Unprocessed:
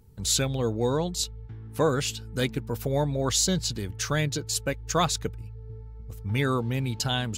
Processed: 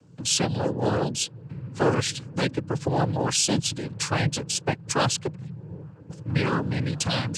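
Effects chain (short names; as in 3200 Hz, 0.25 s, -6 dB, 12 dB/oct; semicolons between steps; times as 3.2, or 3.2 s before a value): in parallel at -1.5 dB: compressor, threshold -33 dBFS, peak gain reduction 14 dB; on the sum: noise vocoder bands 8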